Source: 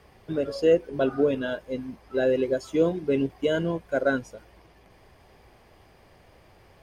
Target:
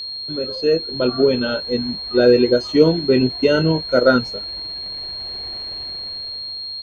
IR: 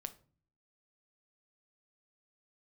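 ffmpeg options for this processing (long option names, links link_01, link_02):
-filter_complex "[0:a]asplit=2[link_01][link_02];[link_02]adelay=23,volume=-10.5dB[link_03];[link_01][link_03]amix=inputs=2:normalize=0,dynaudnorm=framelen=200:gausssize=11:maxgain=14dB,aeval=exprs='val(0)+0.0562*sin(2*PI*4500*n/s)':channel_layout=same,asetrate=41625,aresample=44100,atempo=1.05946,acrossover=split=5000[link_04][link_05];[link_05]acompressor=threshold=-44dB:ratio=4:attack=1:release=60[link_06];[link_04][link_06]amix=inputs=2:normalize=0"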